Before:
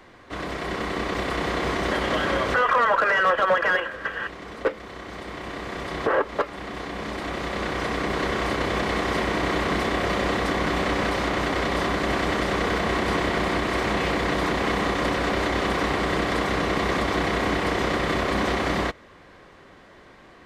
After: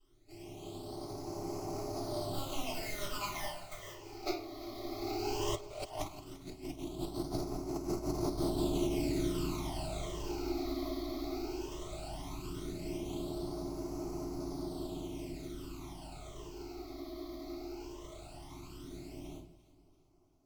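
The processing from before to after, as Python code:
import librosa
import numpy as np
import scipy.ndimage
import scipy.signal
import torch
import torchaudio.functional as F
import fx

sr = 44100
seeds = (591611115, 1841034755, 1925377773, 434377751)

y = scipy.ndimage.median_filter(x, 41, mode='constant')
y = fx.doppler_pass(y, sr, speed_mps=29, closest_m=5.9, pass_at_s=6.17)
y = fx.tilt_shelf(y, sr, db=-5.0, hz=970.0)
y = fx.phaser_stages(y, sr, stages=12, low_hz=150.0, high_hz=3300.0, hz=0.16, feedback_pct=25)
y = fx.high_shelf(y, sr, hz=3900.0, db=6.0)
y = fx.room_shoebox(y, sr, seeds[0], volume_m3=39.0, walls='mixed', distance_m=2.8)
y = fx.over_compress(y, sr, threshold_db=-35.0, ratio=-0.5)
y = fx.fixed_phaser(y, sr, hz=330.0, stages=8)
y = fx.echo_alternate(y, sr, ms=172, hz=920.0, feedback_pct=65, wet_db=-14)
y = y * librosa.db_to_amplitude(4.0)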